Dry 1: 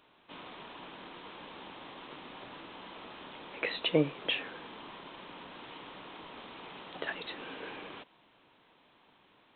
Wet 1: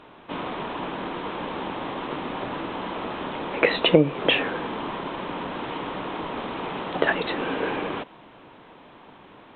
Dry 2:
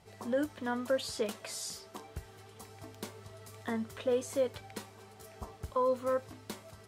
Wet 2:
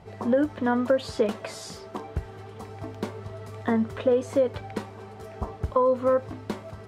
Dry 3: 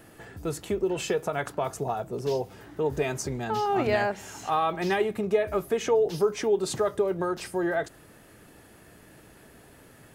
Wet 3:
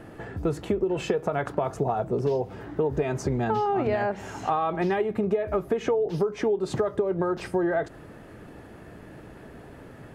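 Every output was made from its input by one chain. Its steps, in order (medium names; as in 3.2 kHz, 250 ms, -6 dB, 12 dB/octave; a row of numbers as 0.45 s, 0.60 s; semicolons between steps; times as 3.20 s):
low-pass 1.2 kHz 6 dB/octave; compression 12:1, threshold -30 dBFS; normalise loudness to -27 LUFS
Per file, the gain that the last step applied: +18.5 dB, +13.0 dB, +9.0 dB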